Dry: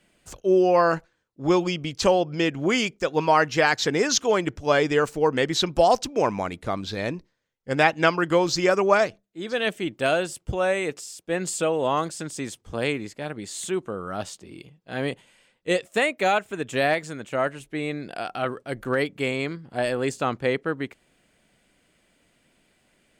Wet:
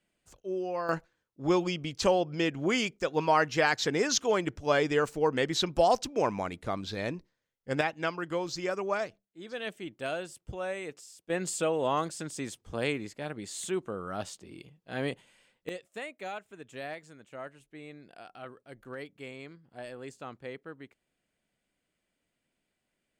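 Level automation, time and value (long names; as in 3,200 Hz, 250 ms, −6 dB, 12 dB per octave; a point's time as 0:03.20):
−15 dB
from 0:00.89 −5.5 dB
from 0:07.81 −12 dB
from 0:11.30 −5 dB
from 0:15.69 −17.5 dB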